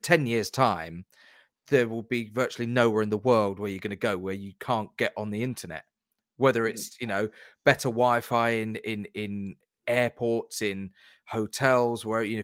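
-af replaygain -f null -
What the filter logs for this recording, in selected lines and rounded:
track_gain = +6.5 dB
track_peak = 0.432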